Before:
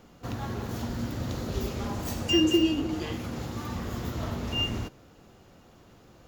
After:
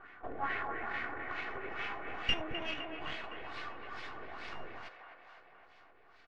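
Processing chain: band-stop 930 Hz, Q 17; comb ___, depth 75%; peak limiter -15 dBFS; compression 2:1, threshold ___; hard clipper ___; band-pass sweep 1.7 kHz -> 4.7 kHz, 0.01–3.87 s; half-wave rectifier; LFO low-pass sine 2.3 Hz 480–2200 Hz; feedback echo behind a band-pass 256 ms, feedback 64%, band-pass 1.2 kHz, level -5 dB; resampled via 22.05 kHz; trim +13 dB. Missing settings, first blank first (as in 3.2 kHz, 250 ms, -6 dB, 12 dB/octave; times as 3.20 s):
2.7 ms, -28 dBFS, -24.5 dBFS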